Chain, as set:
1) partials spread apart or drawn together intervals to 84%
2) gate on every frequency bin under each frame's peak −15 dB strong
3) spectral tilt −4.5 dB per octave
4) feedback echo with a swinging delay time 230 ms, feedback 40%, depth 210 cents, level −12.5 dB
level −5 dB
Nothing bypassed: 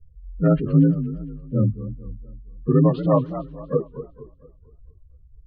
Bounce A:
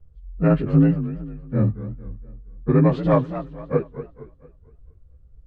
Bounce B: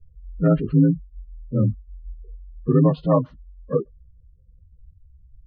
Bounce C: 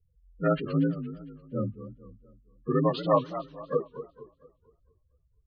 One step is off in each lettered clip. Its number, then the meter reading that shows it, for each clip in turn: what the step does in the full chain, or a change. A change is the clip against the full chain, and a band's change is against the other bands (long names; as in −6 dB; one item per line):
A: 2, 1 kHz band +1.5 dB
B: 4, change in momentary loudness spread −5 LU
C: 3, 1 kHz band +9.5 dB